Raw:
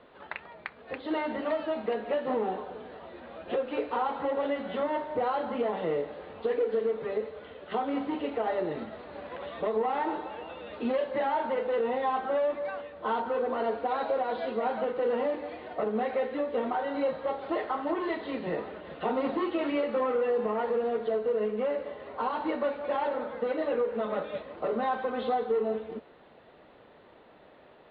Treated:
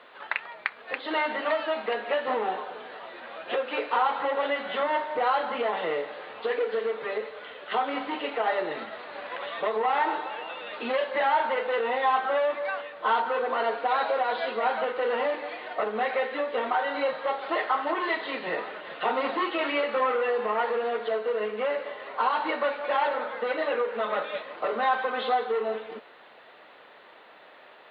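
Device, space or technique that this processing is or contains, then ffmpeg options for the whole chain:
filter by subtraction: -filter_complex "[0:a]asplit=2[s0][s1];[s1]lowpass=1700,volume=-1[s2];[s0][s2]amix=inputs=2:normalize=0,volume=2.51"

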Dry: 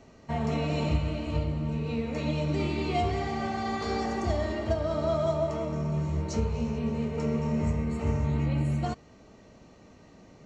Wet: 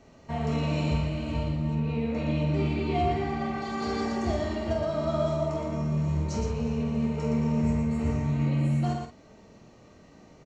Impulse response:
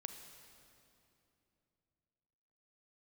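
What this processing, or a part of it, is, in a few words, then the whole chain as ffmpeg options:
slapback doubling: -filter_complex "[0:a]asplit=3[s0][s1][s2];[s1]adelay=25,volume=0.376[s3];[s2]adelay=118,volume=0.562[s4];[s0][s3][s4]amix=inputs=3:normalize=0,asettb=1/sr,asplit=3[s5][s6][s7];[s5]atrim=end=1.754[s8];[s6]atrim=start=1.75:end=3.62,asetpts=PTS-STARTPTS,afade=t=in:d=0.004:c=qsin,afade=t=out:st=1.866:d=0.004:c=qsin,bass=f=250:g=1,treble=f=4000:g=-9[s9];[s7]atrim=start=3.616[s10];[s8][s9]acrossfade=d=0.004:c1=hsin:c2=qsin[s11];[s11][s10]acrossfade=d=0.004:c1=qsin:c2=hsin,asplit=2[s12][s13];[s13]adelay=48,volume=0.501[s14];[s12][s14]amix=inputs=2:normalize=0,volume=0.794"

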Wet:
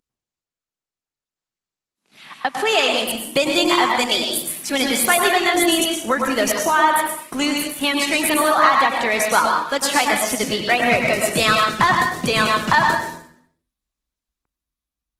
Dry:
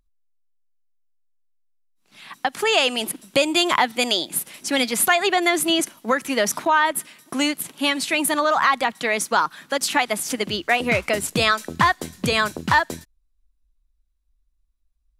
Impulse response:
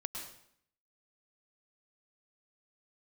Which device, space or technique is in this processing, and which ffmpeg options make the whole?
far-field microphone of a smart speaker: -filter_complex "[1:a]atrim=start_sample=2205[s0];[0:a][s0]afir=irnorm=-1:irlink=0,highpass=120,dynaudnorm=f=550:g=5:m=2.11" -ar 48000 -c:a libopus -b:a 16k

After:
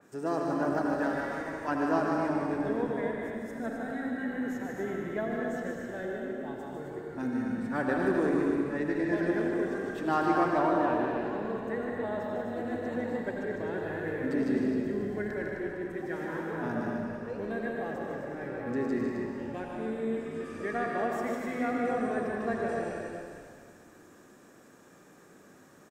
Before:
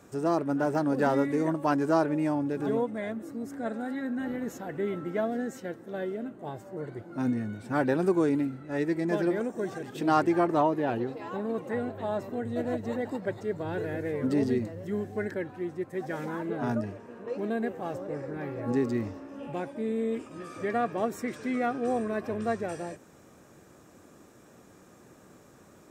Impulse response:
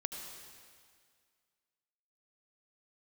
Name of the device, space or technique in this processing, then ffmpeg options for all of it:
stadium PA: -filter_complex "[0:a]asettb=1/sr,asplit=3[s0][s1][s2];[s0]atrim=end=0.944[s3];[s1]atrim=start=0.94:end=1.68,asetpts=PTS-STARTPTS,afade=t=in:d=0.004:c=qsin,afade=t=out:st=0.736:d=0.004:c=qsin,highpass=f=1400:p=1[s4];[s2]atrim=start=1.676[s5];[s3][s4]acrossfade=d=0.004:c1=hsin:c2=qsin[s6];[s6][s5]acrossfade=d=0.004:c1=qsin:c2=hsin,highpass=150,equalizer=f=1700:t=o:w=0.33:g=6.5,aecho=1:1:151.6|186.6|259.5:0.562|0.282|0.501[s7];[1:a]atrim=start_sample=2205[s8];[s7][s8]afir=irnorm=-1:irlink=0,asplit=6[s9][s10][s11][s12][s13][s14];[s10]adelay=230,afreqshift=-64,volume=0.141[s15];[s11]adelay=460,afreqshift=-128,volume=0.0759[s16];[s12]adelay=690,afreqshift=-192,volume=0.0412[s17];[s13]adelay=920,afreqshift=-256,volume=0.0221[s18];[s14]adelay=1150,afreqshift=-320,volume=0.012[s19];[s9][s15][s16][s17][s18][s19]amix=inputs=6:normalize=0,adynamicequalizer=threshold=0.00562:dfrequency=3300:dqfactor=0.7:tfrequency=3300:tqfactor=0.7:attack=5:release=100:ratio=0.375:range=2:mode=cutabove:tftype=highshelf,volume=0.668"

